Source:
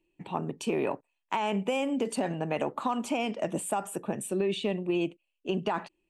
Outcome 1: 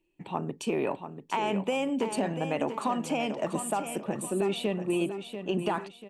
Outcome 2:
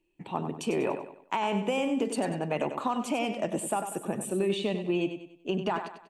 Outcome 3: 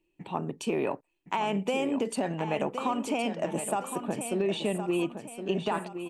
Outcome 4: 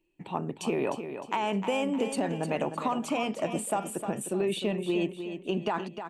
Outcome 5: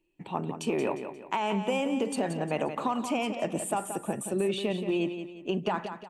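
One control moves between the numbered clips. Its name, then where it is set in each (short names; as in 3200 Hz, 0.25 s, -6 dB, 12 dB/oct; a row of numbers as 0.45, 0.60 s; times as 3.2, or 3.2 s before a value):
feedback echo, time: 689, 96, 1066, 306, 177 ms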